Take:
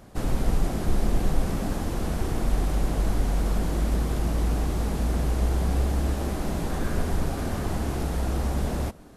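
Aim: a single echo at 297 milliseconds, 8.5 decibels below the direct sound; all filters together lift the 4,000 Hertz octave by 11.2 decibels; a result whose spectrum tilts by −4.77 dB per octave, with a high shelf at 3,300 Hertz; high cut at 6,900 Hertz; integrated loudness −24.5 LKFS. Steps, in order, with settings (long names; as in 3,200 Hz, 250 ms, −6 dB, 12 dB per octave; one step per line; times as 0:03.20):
low-pass filter 6,900 Hz
high-shelf EQ 3,300 Hz +9 dB
parametric band 4,000 Hz +8 dB
single-tap delay 297 ms −8.5 dB
level +2 dB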